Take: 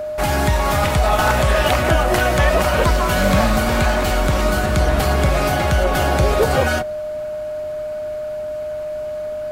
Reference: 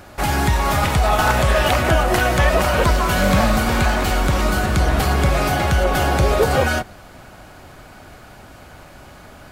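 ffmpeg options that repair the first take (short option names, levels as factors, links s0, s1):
-af "bandreject=f=610:w=30"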